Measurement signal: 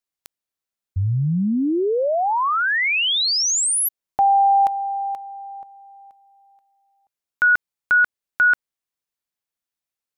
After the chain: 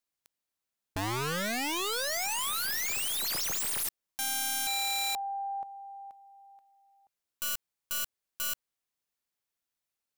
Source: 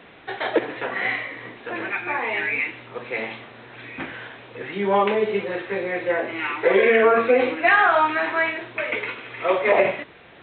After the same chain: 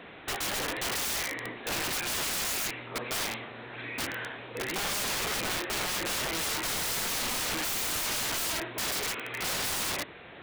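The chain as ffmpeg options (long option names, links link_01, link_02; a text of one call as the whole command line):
ffmpeg -i in.wav -af "aeval=exprs='(tanh(4.47*val(0)+0.1)-tanh(0.1))/4.47':channel_layout=same,aeval=exprs='(mod(21.1*val(0)+1,2)-1)/21.1':channel_layout=same" out.wav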